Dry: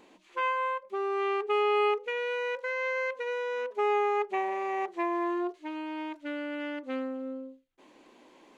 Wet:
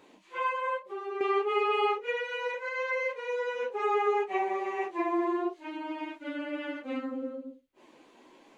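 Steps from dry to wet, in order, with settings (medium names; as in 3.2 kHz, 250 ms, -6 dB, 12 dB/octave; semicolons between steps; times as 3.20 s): phase randomisation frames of 100 ms; 0.77–1.21 s: compression 2:1, threshold -39 dBFS, peak gain reduction 7.5 dB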